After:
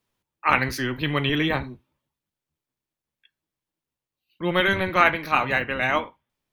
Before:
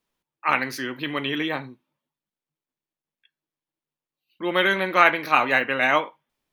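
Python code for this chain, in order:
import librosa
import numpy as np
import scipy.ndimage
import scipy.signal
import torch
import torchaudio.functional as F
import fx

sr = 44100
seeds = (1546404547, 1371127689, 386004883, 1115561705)

y = fx.octave_divider(x, sr, octaves=1, level_db=0.0)
y = fx.rider(y, sr, range_db=10, speed_s=2.0)
y = F.gain(torch.from_numpy(y), -1.0).numpy()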